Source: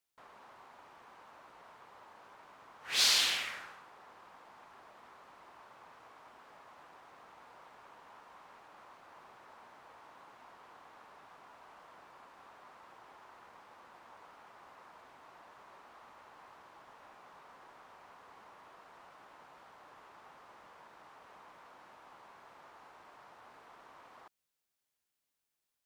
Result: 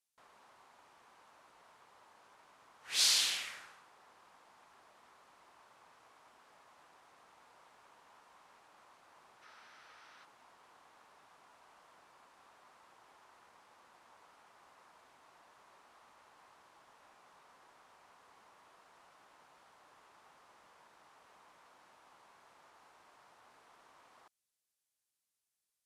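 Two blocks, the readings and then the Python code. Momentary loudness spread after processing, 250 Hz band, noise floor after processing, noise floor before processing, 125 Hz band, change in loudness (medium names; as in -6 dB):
14 LU, -7.5 dB, under -85 dBFS, under -85 dBFS, -7.5 dB, -1.0 dB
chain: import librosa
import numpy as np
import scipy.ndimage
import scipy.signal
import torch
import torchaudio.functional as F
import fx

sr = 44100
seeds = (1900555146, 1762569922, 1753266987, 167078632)

y = scipy.signal.sosfilt(scipy.signal.butter(4, 12000.0, 'lowpass', fs=sr, output='sos'), x)
y = fx.spec_box(y, sr, start_s=9.42, length_s=0.83, low_hz=1200.0, high_hz=6300.0, gain_db=8)
y = fx.high_shelf(y, sr, hz=4400.0, db=11.5)
y = y * librosa.db_to_amplitude(-7.5)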